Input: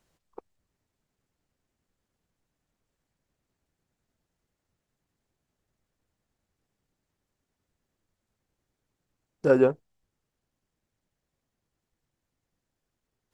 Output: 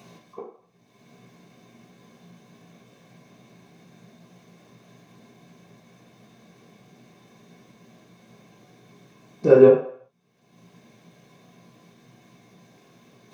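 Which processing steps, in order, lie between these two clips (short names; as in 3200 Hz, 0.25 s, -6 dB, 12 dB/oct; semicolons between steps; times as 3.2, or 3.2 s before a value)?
low shelf 240 Hz -6 dB; upward compressor, threshold -40 dBFS; reverb RT60 0.60 s, pre-delay 3 ms, DRR -9 dB; gain -7 dB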